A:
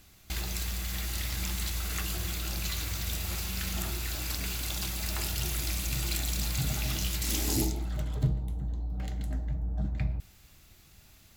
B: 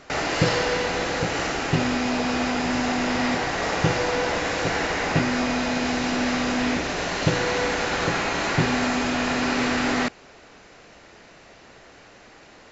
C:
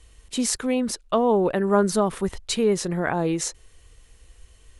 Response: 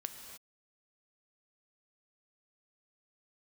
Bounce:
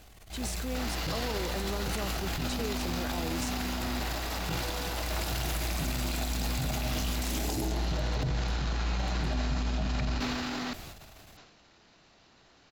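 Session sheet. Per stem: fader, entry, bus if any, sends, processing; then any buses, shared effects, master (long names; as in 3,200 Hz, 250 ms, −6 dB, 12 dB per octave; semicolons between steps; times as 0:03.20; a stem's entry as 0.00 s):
+2.0 dB, 0.00 s, send −12 dB, parametric band 670 Hz +9 dB 0.81 octaves; automatic ducking −8 dB, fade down 0.20 s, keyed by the third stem
−9.5 dB, 0.65 s, no send, octave-band graphic EQ 500/2,000/4,000 Hz −7/−6/+6 dB
−5.0 dB, 0.00 s, no send, downward compressor, threshold −28 dBFS, peak gain reduction 14 dB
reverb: on, pre-delay 3 ms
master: high-shelf EQ 5,200 Hz −5.5 dB; transient designer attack −9 dB, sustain +10 dB; brickwall limiter −22.5 dBFS, peak gain reduction 9.5 dB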